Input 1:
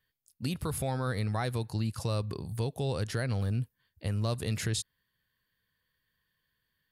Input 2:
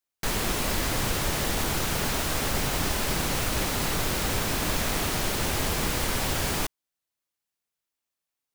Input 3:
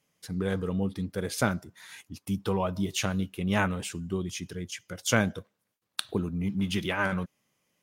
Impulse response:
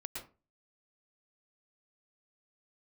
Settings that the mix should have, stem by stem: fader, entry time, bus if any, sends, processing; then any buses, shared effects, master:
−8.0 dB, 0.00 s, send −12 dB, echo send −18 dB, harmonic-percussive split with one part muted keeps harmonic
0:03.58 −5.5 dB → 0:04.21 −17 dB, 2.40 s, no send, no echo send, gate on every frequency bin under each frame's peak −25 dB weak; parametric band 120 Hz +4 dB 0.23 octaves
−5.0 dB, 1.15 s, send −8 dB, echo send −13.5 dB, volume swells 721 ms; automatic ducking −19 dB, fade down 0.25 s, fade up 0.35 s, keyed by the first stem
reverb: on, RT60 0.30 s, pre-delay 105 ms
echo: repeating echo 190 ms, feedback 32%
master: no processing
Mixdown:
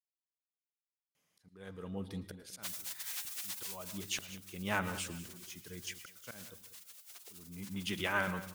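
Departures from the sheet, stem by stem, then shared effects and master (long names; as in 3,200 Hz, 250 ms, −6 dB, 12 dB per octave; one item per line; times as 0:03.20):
stem 1: muted
master: extra low-shelf EQ 480 Hz −6.5 dB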